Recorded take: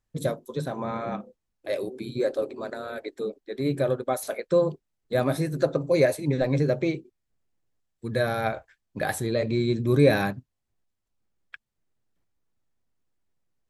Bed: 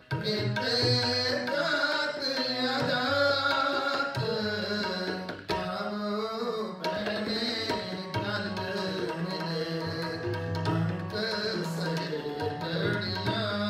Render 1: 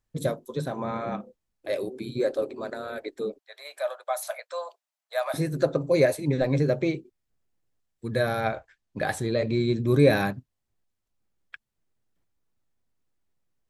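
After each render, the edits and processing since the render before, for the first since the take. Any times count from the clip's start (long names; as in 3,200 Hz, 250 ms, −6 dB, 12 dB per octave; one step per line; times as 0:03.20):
0:03.39–0:05.34: Chebyshev high-pass filter 610 Hz, order 5
0:08.40–0:09.88: low-pass filter 8,500 Hz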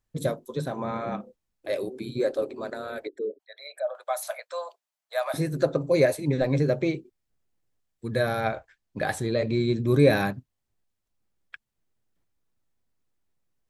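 0:03.07–0:03.95: spectral envelope exaggerated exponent 2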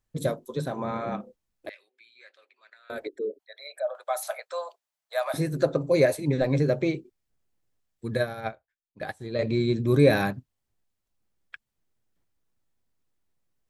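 0:01.69–0:02.90: four-pole ladder band-pass 2,500 Hz, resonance 45%
0:04.15–0:04.61: hollow resonant body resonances 410/780/1,300 Hz, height 7 dB
0:08.17–0:09.39: expander for the loud parts 2.5 to 1, over −38 dBFS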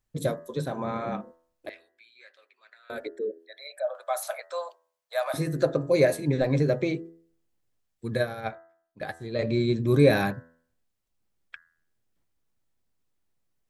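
hum removal 82.97 Hz, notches 24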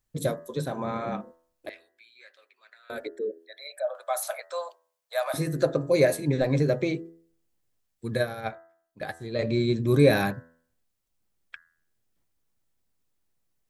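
high-shelf EQ 6,000 Hz +4.5 dB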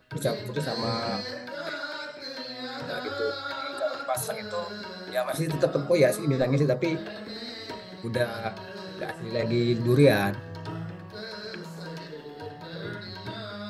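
mix in bed −7.5 dB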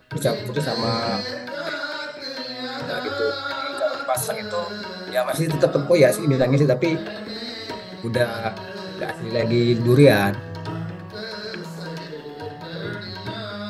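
level +6 dB
brickwall limiter −2 dBFS, peak gain reduction 1 dB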